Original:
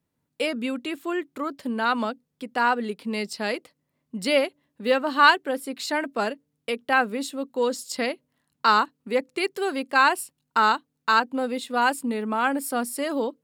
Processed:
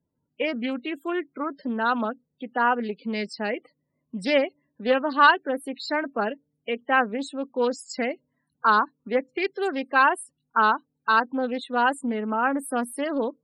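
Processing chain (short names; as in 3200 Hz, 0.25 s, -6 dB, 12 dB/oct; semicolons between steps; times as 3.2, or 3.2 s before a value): loudest bins only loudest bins 32; Doppler distortion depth 0.17 ms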